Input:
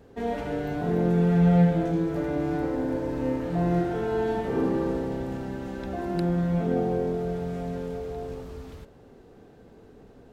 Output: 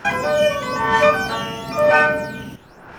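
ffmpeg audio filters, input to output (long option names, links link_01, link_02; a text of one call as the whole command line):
ffmpeg -i in.wav -af "aphaser=in_gain=1:out_gain=1:delay=1.2:decay=0.65:speed=0.29:type=sinusoidal,asetrate=152586,aresample=44100,volume=3.5dB" out.wav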